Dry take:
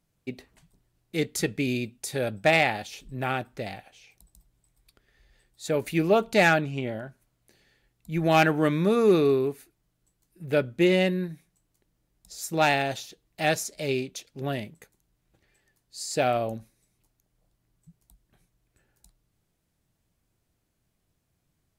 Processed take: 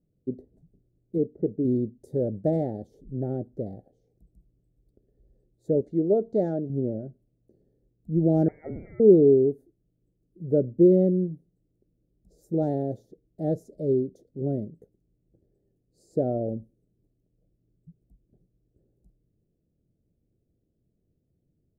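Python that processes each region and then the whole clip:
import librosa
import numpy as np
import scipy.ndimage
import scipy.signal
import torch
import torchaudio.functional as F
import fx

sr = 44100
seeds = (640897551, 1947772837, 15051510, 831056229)

y = fx.chain(x, sr, fx.lowpass(hz=1600.0, slope=24),
    fx.low_shelf(hz=220.0, db=-8.0), at=(1.18, 1.65))
y = fx.chain(y, sr, fx.lowpass(hz=6600.0, slope=24),
    fx.low_shelf(hz=250.0, db=-10.5), at=(5.81, 6.7))
y = fx.chain(y, sr, fx.hum_notches(base_hz=50, count=3),
    fx.freq_invert(carrier_hz=2500),
    fx.env_flatten(amount_pct=70), at=(8.48, 9.0))
y = scipy.signal.sosfilt(scipy.signal.cheby2(4, 40, 980.0, 'lowpass', fs=sr, output='sos'), y)
y = fx.tilt_eq(y, sr, slope=1.5)
y = y * librosa.db_to_amplitude(7.5)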